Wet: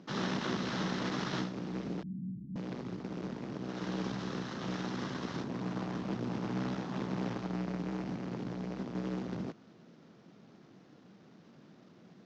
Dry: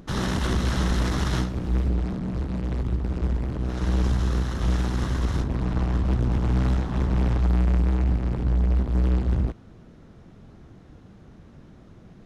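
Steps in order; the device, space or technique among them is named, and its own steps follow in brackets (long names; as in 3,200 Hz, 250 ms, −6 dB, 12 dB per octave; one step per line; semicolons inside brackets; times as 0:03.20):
early wireless headset (high-pass filter 160 Hz 24 dB per octave; variable-slope delta modulation 32 kbit/s)
0:02.03–0:02.56: inverse Chebyshev low-pass filter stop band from 560 Hz, stop band 50 dB
level −6 dB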